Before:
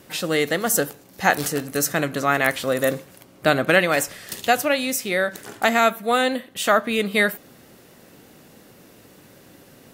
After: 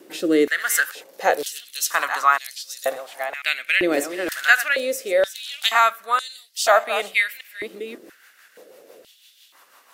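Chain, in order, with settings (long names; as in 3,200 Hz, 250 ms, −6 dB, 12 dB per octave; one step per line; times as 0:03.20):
delay that plays each chunk backwards 570 ms, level −12 dB
rotating-speaker cabinet horn 0.85 Hz, later 6 Hz, at 0:07.04
high-pass on a step sequencer 2.1 Hz 340–4,900 Hz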